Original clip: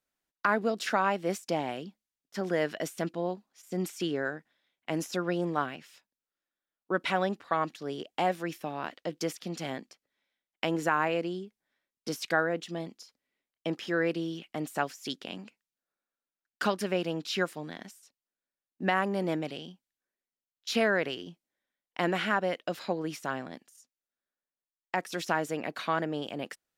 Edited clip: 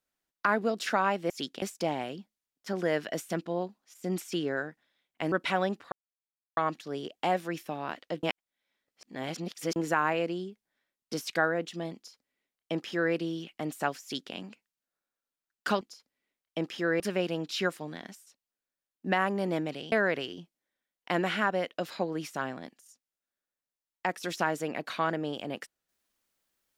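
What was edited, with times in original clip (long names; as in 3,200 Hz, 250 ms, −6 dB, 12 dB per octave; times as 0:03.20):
0:05.00–0:06.92: remove
0:07.52: splice in silence 0.65 s
0:09.18–0:10.71: reverse
0:12.90–0:14.09: duplicate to 0:16.76
0:14.97–0:15.29: duplicate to 0:01.30
0:19.68–0:20.81: remove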